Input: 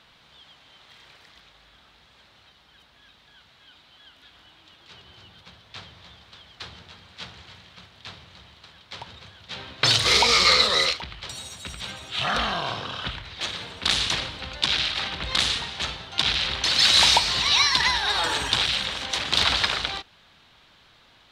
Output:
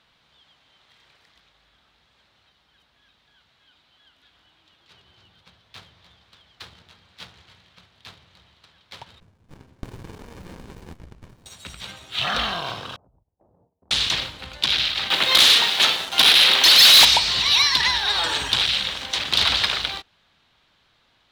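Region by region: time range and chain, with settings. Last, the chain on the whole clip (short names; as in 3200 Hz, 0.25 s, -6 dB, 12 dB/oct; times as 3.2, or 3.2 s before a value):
9.2–11.46 high shelf 2500 Hz -7.5 dB + compressor 3:1, threshold -32 dBFS + running maximum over 65 samples
12.96–13.91 gate -37 dBFS, range -28 dB + steep low-pass 820 Hz + compressor 12:1, threshold -50 dBFS
15.1–17.05 HPF 310 Hz + sample leveller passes 3
whole clip: dynamic EQ 3500 Hz, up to +5 dB, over -31 dBFS, Q 0.94; sample leveller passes 1; gain -5 dB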